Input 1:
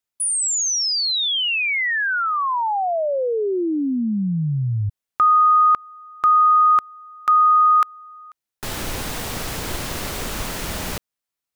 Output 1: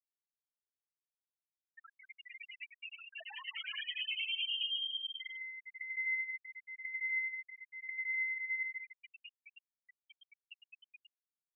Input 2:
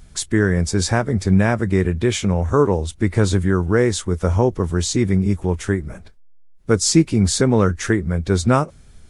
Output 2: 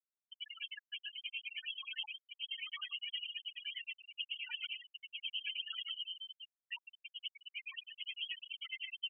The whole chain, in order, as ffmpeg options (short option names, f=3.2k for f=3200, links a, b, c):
-filter_complex "[0:a]highpass=130,lowshelf=f=300:g=-11,bandreject=f=380:w=12,asplit=2[a][b];[b]aecho=0:1:60|156|309.6|555.4|948.6:0.631|0.398|0.251|0.158|0.1[c];[a][c]amix=inputs=2:normalize=0,acompressor=threshold=-20dB:ratio=10:attack=0.82:release=28:knee=1:detection=rms,aeval=exprs='(mod(20*val(0)+1,2)-1)/20':c=same,acrossover=split=1800[d][e];[d]aeval=exprs='val(0)*(1-1/2+1/2*cos(2*PI*9.5*n/s))':c=same[f];[e]aeval=exprs='val(0)*(1-1/2-1/2*cos(2*PI*9.5*n/s))':c=same[g];[f][g]amix=inputs=2:normalize=0,asoftclip=type=hard:threshold=-37.5dB,asplit=2[h][i];[i]aecho=0:1:151|302|453|604|755|906:0.596|0.298|0.149|0.0745|0.0372|0.0186[j];[h][j]amix=inputs=2:normalize=0,lowpass=f=2.8k:t=q:w=0.5098,lowpass=f=2.8k:t=q:w=0.6013,lowpass=f=2.8k:t=q:w=0.9,lowpass=f=2.8k:t=q:w=2.563,afreqshift=-3300,afftfilt=real='re*gte(hypot(re,im),0.0398)':imag='im*gte(hypot(re,im),0.0398)':win_size=1024:overlap=0.75,volume=4.5dB"